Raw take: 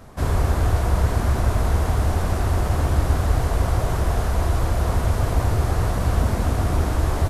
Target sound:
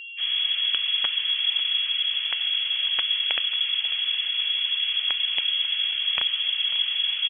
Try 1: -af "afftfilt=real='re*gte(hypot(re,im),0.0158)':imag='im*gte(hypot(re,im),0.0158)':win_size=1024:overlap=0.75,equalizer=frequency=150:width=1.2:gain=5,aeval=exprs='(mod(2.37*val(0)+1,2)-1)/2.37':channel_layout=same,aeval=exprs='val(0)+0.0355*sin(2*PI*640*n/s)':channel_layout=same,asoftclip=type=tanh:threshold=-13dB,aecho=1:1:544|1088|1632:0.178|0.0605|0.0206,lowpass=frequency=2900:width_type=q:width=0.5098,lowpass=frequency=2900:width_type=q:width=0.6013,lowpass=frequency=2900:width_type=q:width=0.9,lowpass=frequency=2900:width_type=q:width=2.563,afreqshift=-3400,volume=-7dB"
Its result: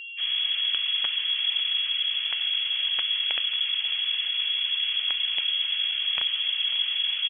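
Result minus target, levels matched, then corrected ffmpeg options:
soft clipping: distortion +12 dB
-af "afftfilt=real='re*gte(hypot(re,im),0.0158)':imag='im*gte(hypot(re,im),0.0158)':win_size=1024:overlap=0.75,equalizer=frequency=150:width=1.2:gain=5,aeval=exprs='(mod(2.37*val(0)+1,2)-1)/2.37':channel_layout=same,aeval=exprs='val(0)+0.0355*sin(2*PI*640*n/s)':channel_layout=same,asoftclip=type=tanh:threshold=-5.5dB,aecho=1:1:544|1088|1632:0.178|0.0605|0.0206,lowpass=frequency=2900:width_type=q:width=0.5098,lowpass=frequency=2900:width_type=q:width=0.6013,lowpass=frequency=2900:width_type=q:width=0.9,lowpass=frequency=2900:width_type=q:width=2.563,afreqshift=-3400,volume=-7dB"

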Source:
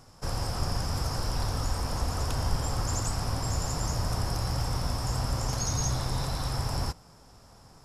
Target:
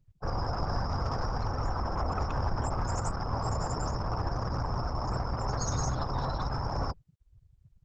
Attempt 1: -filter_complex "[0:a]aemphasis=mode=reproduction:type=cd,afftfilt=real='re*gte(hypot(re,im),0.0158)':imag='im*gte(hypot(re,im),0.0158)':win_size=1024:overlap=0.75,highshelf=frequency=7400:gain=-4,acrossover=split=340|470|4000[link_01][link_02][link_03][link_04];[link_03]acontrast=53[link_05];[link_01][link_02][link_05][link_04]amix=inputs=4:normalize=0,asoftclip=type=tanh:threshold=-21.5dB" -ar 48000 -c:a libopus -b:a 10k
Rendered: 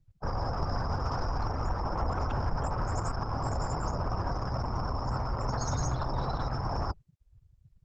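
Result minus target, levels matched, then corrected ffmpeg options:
8,000 Hz band −3.0 dB
-filter_complex "[0:a]aemphasis=mode=reproduction:type=cd,afftfilt=real='re*gte(hypot(re,im),0.0158)':imag='im*gte(hypot(re,im),0.0158)':win_size=1024:overlap=0.75,highshelf=frequency=7400:gain=3,acrossover=split=340|470|4000[link_01][link_02][link_03][link_04];[link_03]acontrast=53[link_05];[link_01][link_02][link_05][link_04]amix=inputs=4:normalize=0,asoftclip=type=tanh:threshold=-21.5dB" -ar 48000 -c:a libopus -b:a 10k

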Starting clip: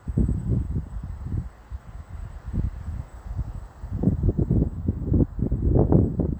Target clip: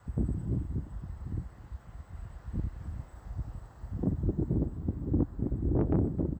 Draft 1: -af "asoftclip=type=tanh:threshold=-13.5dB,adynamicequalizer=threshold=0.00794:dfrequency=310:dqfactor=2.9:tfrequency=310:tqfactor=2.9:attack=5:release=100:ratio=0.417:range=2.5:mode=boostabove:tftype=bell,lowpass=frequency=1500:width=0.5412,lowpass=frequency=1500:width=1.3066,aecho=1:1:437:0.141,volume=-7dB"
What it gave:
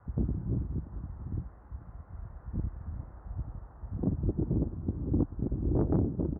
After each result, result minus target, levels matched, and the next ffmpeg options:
echo 175 ms late; 2,000 Hz band −4.5 dB
-af "asoftclip=type=tanh:threshold=-13.5dB,adynamicequalizer=threshold=0.00794:dfrequency=310:dqfactor=2.9:tfrequency=310:tqfactor=2.9:attack=5:release=100:ratio=0.417:range=2.5:mode=boostabove:tftype=bell,lowpass=frequency=1500:width=0.5412,lowpass=frequency=1500:width=1.3066,aecho=1:1:262:0.141,volume=-7dB"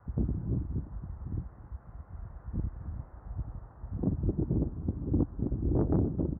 2,000 Hz band −5.0 dB
-af "asoftclip=type=tanh:threshold=-13.5dB,adynamicequalizer=threshold=0.00794:dfrequency=310:dqfactor=2.9:tfrequency=310:tqfactor=2.9:attack=5:release=100:ratio=0.417:range=2.5:mode=boostabove:tftype=bell,aecho=1:1:262:0.141,volume=-7dB"

